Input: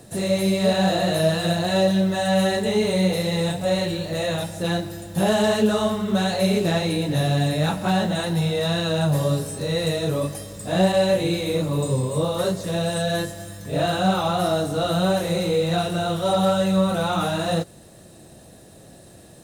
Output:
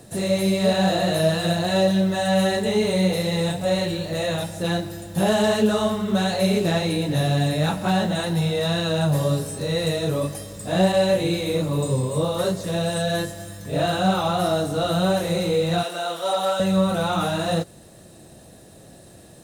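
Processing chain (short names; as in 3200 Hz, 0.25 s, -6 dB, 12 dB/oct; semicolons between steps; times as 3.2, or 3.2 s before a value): 15.83–16.6 HPF 520 Hz 12 dB/oct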